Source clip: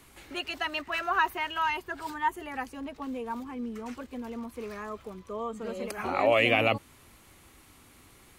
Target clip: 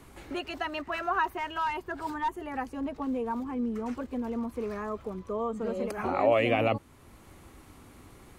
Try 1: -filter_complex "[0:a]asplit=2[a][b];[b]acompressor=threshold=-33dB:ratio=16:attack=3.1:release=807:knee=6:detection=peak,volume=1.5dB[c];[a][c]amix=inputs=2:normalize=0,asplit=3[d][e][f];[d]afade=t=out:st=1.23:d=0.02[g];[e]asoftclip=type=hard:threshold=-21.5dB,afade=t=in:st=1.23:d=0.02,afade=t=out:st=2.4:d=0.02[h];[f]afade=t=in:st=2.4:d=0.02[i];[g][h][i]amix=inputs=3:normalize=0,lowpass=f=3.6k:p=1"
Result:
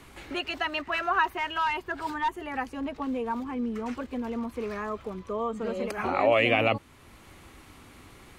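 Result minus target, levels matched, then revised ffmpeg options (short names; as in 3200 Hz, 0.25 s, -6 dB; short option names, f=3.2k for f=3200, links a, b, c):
2000 Hz band +3.5 dB
-filter_complex "[0:a]asplit=2[a][b];[b]acompressor=threshold=-33dB:ratio=16:attack=3.1:release=807:knee=6:detection=peak,volume=1.5dB[c];[a][c]amix=inputs=2:normalize=0,asplit=3[d][e][f];[d]afade=t=out:st=1.23:d=0.02[g];[e]asoftclip=type=hard:threshold=-21.5dB,afade=t=in:st=1.23:d=0.02,afade=t=out:st=2.4:d=0.02[h];[f]afade=t=in:st=2.4:d=0.02[i];[g][h][i]amix=inputs=3:normalize=0,lowpass=f=3.6k:p=1,equalizer=f=2.8k:w=0.56:g=-7"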